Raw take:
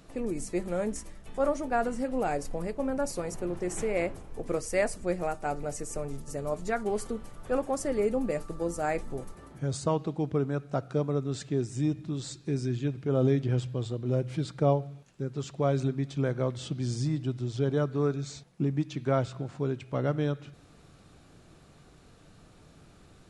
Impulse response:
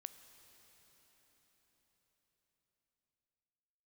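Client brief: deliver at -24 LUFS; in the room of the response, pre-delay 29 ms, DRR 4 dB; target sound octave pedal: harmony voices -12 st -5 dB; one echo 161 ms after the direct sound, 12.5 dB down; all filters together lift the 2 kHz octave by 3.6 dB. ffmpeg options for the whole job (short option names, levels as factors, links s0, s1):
-filter_complex "[0:a]equalizer=f=2000:t=o:g=4.5,aecho=1:1:161:0.237,asplit=2[s0][s1];[1:a]atrim=start_sample=2205,adelay=29[s2];[s1][s2]afir=irnorm=-1:irlink=0,volume=1.19[s3];[s0][s3]amix=inputs=2:normalize=0,asplit=2[s4][s5];[s5]asetrate=22050,aresample=44100,atempo=2,volume=0.562[s6];[s4][s6]amix=inputs=2:normalize=0,volume=1.58"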